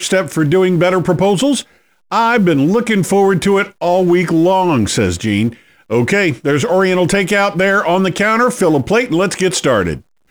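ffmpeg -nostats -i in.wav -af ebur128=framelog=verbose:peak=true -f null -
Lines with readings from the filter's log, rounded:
Integrated loudness:
  I:         -13.5 LUFS
  Threshold: -23.7 LUFS
Loudness range:
  LRA:         1.1 LU
  Threshold: -33.6 LUFS
  LRA low:   -14.1 LUFS
  LRA high:  -13.0 LUFS
True peak:
  Peak:       -3.5 dBFS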